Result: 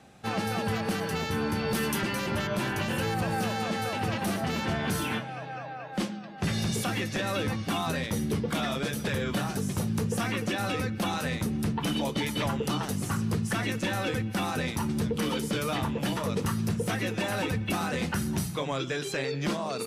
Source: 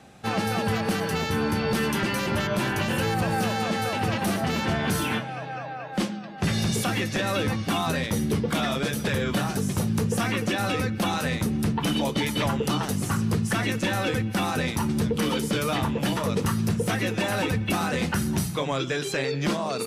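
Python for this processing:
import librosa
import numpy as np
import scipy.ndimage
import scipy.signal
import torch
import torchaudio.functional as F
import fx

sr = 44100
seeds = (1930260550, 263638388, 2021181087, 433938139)

y = fx.high_shelf(x, sr, hz=fx.line((1.58, 12000.0), (2.01, 7100.0)), db=10.0, at=(1.58, 2.01), fade=0.02)
y = F.gain(torch.from_numpy(y), -4.0).numpy()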